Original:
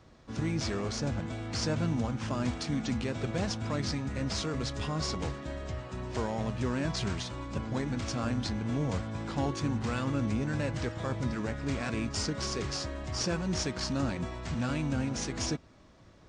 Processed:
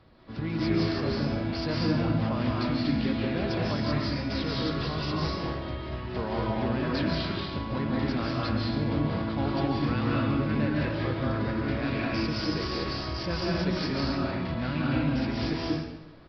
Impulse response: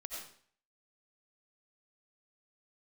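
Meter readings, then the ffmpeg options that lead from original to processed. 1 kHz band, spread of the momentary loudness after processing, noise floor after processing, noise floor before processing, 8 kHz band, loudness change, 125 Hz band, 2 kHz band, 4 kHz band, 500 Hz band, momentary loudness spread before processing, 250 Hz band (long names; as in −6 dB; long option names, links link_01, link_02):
+5.0 dB, 5 LU, −37 dBFS, −56 dBFS, below −15 dB, +4.0 dB, +3.5 dB, +5.0 dB, +3.0 dB, +4.5 dB, 5 LU, +5.5 dB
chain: -filter_complex "[1:a]atrim=start_sample=2205,asetrate=22491,aresample=44100[link_01];[0:a][link_01]afir=irnorm=-1:irlink=0,aresample=11025,aresample=44100,volume=1.5dB"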